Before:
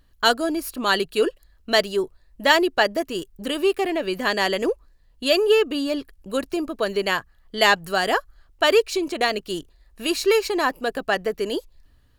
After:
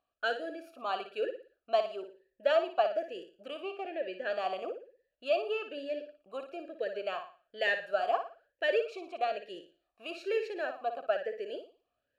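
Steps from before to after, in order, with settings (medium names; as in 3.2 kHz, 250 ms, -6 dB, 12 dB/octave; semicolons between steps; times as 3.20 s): 3.60–4.30 s: distance through air 63 m; flutter echo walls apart 9.9 m, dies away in 0.4 s; talking filter a-e 1.1 Hz; trim -2 dB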